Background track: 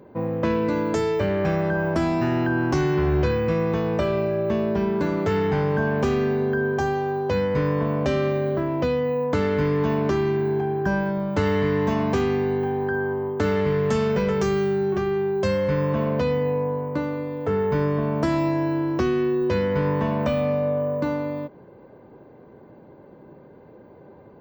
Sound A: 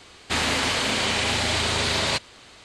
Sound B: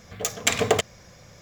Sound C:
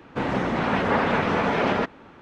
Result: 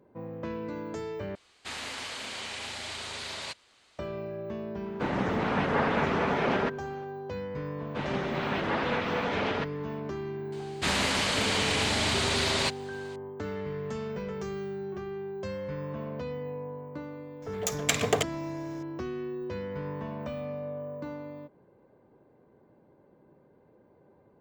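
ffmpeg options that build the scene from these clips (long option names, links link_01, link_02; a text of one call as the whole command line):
ffmpeg -i bed.wav -i cue0.wav -i cue1.wav -i cue2.wav -filter_complex "[1:a]asplit=2[link_01][link_02];[3:a]asplit=2[link_03][link_04];[0:a]volume=-13.5dB[link_05];[link_01]lowshelf=frequency=380:gain=-8[link_06];[link_04]equalizer=frequency=3700:width=0.83:gain=7[link_07];[link_02]volume=15dB,asoftclip=hard,volume=-15dB[link_08];[link_05]asplit=2[link_09][link_10];[link_09]atrim=end=1.354[link_11];[link_06]atrim=end=2.64,asetpts=PTS-STARTPTS,volume=-13.5dB[link_12];[link_10]atrim=start=3.986[link_13];[link_03]atrim=end=2.21,asetpts=PTS-STARTPTS,volume=-5dB,afade=type=in:duration=0.004:curve=hsin,afade=type=out:start_time=2.206:duration=0.004:curve=hsin,adelay=4840[link_14];[link_07]atrim=end=2.21,asetpts=PTS-STARTPTS,volume=-9dB,afade=type=in:duration=0.004:curve=hsin,afade=type=out:start_time=2.206:duration=0.004:curve=hsin,adelay=7790[link_15];[link_08]atrim=end=2.64,asetpts=PTS-STARTPTS,volume=-4dB,afade=type=in:duration=0.004:curve=hsin,afade=type=out:start_time=2.636:duration=0.004:curve=hsin,adelay=10520[link_16];[2:a]atrim=end=1.41,asetpts=PTS-STARTPTS,volume=-4.5dB,afade=type=in:duration=0.004:curve=hsin,afade=type=out:start_time=1.406:duration=0.004:curve=hsin,adelay=17420[link_17];[link_11][link_12]acrossfade=duration=0.004:curve1=hsin:curve2=hsin[link_18];[link_18][link_13]acrossfade=duration=0.004:curve1=hsin:curve2=hsin[link_19];[link_19][link_14][link_15][link_16][link_17]amix=inputs=5:normalize=0" out.wav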